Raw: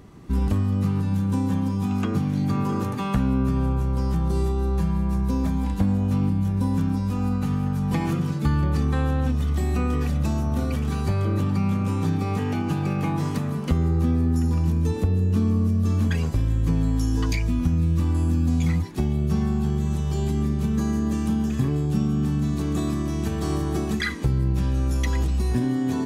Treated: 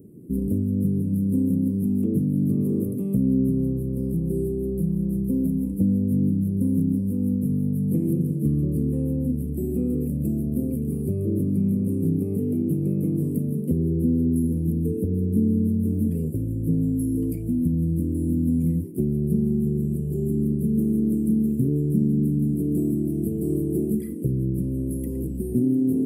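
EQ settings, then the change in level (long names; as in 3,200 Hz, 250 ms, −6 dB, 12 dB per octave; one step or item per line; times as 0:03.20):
high-pass filter 150 Hz 12 dB per octave
inverse Chebyshev band-stop filter 810–6,700 Hz, stop band 40 dB
parametric band 4,000 Hz +9.5 dB 2.9 octaves
+3.5 dB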